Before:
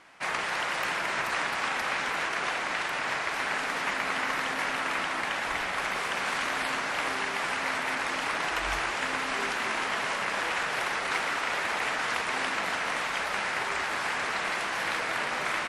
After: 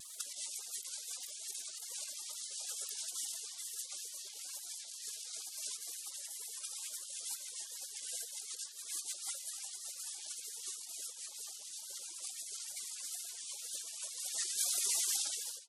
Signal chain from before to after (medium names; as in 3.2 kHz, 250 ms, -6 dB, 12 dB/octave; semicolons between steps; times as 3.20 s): fade out at the end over 1.70 s; spectral gate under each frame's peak -25 dB weak; compressor with a negative ratio -58 dBFS, ratio -0.5; LFO high-pass sine 9.8 Hz 450–2200 Hz; wow and flutter 84 cents; trim +17 dB